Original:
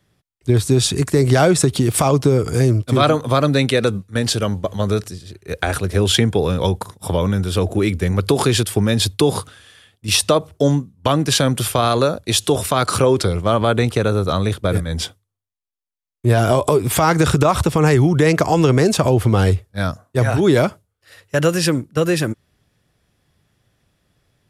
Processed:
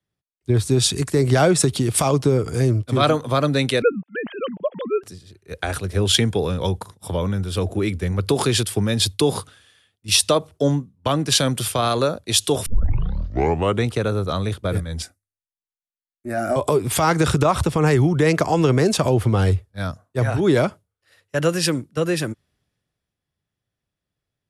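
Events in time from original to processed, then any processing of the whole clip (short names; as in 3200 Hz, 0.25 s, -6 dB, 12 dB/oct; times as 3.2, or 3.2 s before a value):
3.82–5.03 sine-wave speech
12.66 tape start 1.18 s
15.02–16.56 fixed phaser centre 660 Hz, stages 8
whole clip: Chebyshev low-pass 12000 Hz, order 6; three-band expander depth 40%; gain -2.5 dB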